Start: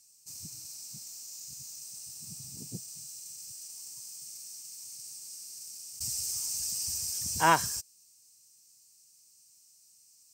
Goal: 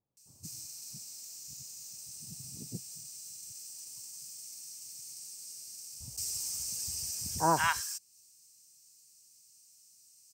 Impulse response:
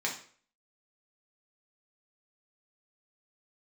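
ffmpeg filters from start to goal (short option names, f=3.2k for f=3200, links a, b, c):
-filter_complex "[0:a]acrossover=split=1100[a][b];[b]adelay=170[c];[a][c]amix=inputs=2:normalize=0,adynamicequalizer=threshold=0.00355:dfrequency=2900:dqfactor=0.7:tfrequency=2900:tqfactor=0.7:attack=5:release=100:ratio=0.375:range=2:mode=cutabove:tftype=highshelf"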